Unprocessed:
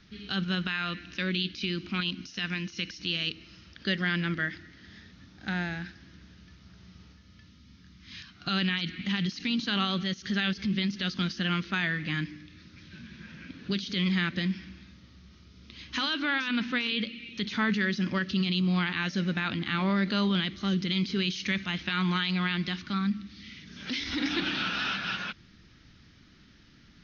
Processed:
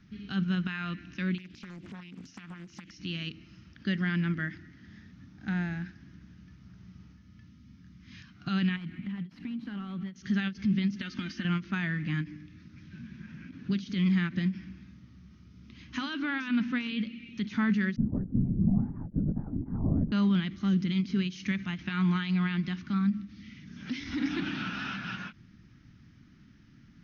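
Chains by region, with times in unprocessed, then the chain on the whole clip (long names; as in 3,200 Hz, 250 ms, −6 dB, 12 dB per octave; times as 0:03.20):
0:01.38–0:02.91: downward compressor 12 to 1, threshold −39 dBFS + highs frequency-modulated by the lows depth 0.8 ms
0:08.76–0:10.16: variable-slope delta modulation 64 kbit/s + downward compressor, threshold −33 dBFS + high-frequency loss of the air 290 metres
0:11.01–0:11.45: parametric band 2,200 Hz +8 dB 1.4 octaves + comb filter 3.3 ms, depth 56% + downward compressor, threshold −28 dBFS
0:17.96–0:20.12: elliptic band-pass filter 110–750 Hz, stop band 60 dB + linear-prediction vocoder at 8 kHz whisper
whole clip: octave-band graphic EQ 125/250/500/4,000 Hz +7/+6/−7/−9 dB; every ending faded ahead of time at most 270 dB per second; level −3.5 dB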